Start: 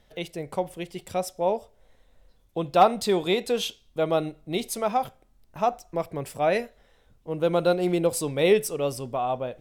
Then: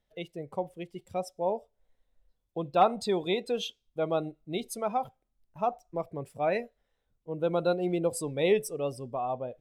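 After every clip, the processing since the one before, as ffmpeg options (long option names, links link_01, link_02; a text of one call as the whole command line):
ffmpeg -i in.wav -af "afftdn=noise_reduction=13:noise_floor=-35,volume=-5dB" out.wav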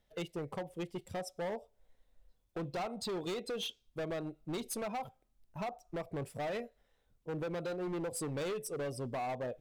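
ffmpeg -i in.wav -af "acompressor=threshold=-34dB:ratio=6,asoftclip=type=hard:threshold=-38dB,volume=3.5dB" out.wav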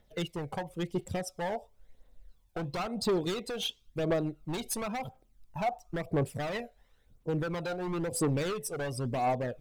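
ffmpeg -i in.wav -af "aphaser=in_gain=1:out_gain=1:delay=1.4:decay=0.52:speed=0.97:type=triangular,volume=4.5dB" out.wav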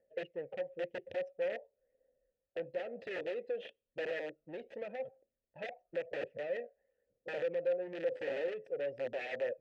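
ffmpeg -i in.wav -filter_complex "[0:a]aeval=exprs='(mod(22.4*val(0)+1,2)-1)/22.4':channel_layout=same,adynamicsmooth=sensitivity=3:basefreq=1300,asplit=3[link_01][link_02][link_03];[link_01]bandpass=frequency=530:width_type=q:width=8,volume=0dB[link_04];[link_02]bandpass=frequency=1840:width_type=q:width=8,volume=-6dB[link_05];[link_03]bandpass=frequency=2480:width_type=q:width=8,volume=-9dB[link_06];[link_04][link_05][link_06]amix=inputs=3:normalize=0,volume=6dB" out.wav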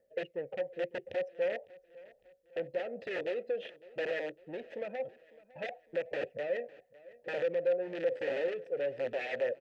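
ffmpeg -i in.wav -af "aecho=1:1:555|1110|1665:0.0891|0.0428|0.0205,volume=3.5dB" out.wav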